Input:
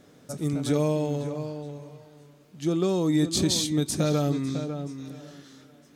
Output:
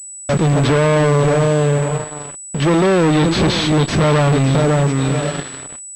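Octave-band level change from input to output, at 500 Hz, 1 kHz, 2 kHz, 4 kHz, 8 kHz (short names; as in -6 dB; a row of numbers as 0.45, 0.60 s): +13.5, +18.5, +21.5, +9.0, +8.0 dB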